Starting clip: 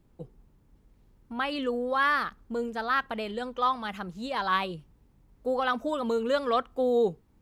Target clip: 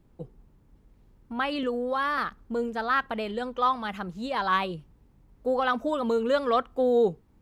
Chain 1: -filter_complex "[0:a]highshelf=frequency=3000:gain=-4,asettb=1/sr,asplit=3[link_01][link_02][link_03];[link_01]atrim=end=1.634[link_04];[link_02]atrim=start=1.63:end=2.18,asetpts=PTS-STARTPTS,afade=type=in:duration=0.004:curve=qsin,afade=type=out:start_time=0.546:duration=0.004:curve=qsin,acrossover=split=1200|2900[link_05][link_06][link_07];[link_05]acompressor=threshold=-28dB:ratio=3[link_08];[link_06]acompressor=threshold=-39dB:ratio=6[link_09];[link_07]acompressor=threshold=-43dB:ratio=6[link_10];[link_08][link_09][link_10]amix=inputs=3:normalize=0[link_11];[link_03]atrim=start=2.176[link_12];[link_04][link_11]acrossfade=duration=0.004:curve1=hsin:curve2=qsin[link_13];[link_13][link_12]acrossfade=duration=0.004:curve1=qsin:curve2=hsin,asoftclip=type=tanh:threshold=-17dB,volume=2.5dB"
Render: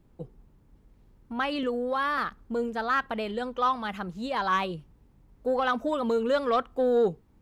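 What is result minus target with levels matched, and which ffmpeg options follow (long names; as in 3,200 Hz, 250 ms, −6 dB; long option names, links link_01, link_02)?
soft clipping: distortion +15 dB
-filter_complex "[0:a]highshelf=frequency=3000:gain=-4,asettb=1/sr,asplit=3[link_01][link_02][link_03];[link_01]atrim=end=1.634[link_04];[link_02]atrim=start=1.63:end=2.18,asetpts=PTS-STARTPTS,afade=type=in:duration=0.004:curve=qsin,afade=type=out:start_time=0.546:duration=0.004:curve=qsin,acrossover=split=1200|2900[link_05][link_06][link_07];[link_05]acompressor=threshold=-28dB:ratio=3[link_08];[link_06]acompressor=threshold=-39dB:ratio=6[link_09];[link_07]acompressor=threshold=-43dB:ratio=6[link_10];[link_08][link_09][link_10]amix=inputs=3:normalize=0[link_11];[link_03]atrim=start=2.176[link_12];[link_04][link_11]acrossfade=duration=0.004:curve1=hsin:curve2=qsin[link_13];[link_13][link_12]acrossfade=duration=0.004:curve1=qsin:curve2=hsin,asoftclip=type=tanh:threshold=-8.5dB,volume=2.5dB"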